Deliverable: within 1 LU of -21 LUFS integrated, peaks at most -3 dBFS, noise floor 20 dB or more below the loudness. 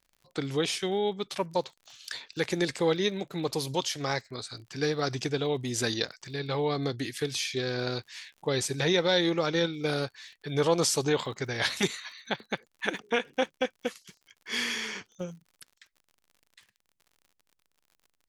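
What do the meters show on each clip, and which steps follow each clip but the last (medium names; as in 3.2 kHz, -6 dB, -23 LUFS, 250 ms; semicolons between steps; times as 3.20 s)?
tick rate 50 per s; loudness -30.0 LUFS; peak level -11.0 dBFS; loudness target -21.0 LUFS
-> de-click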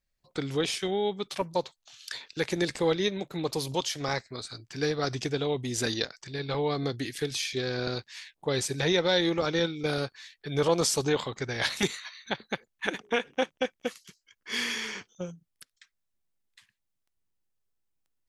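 tick rate 0.16 per s; loudness -30.0 LUFS; peak level -11.0 dBFS; loudness target -21.0 LUFS
-> trim +9 dB; peak limiter -3 dBFS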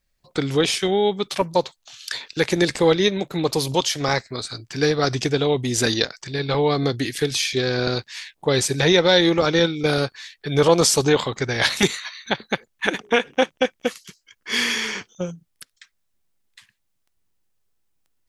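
loudness -21.0 LUFS; peak level -3.0 dBFS; noise floor -71 dBFS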